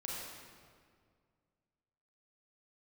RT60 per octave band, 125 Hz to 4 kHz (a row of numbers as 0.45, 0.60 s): 2.5, 2.4, 2.1, 1.9, 1.6, 1.4 s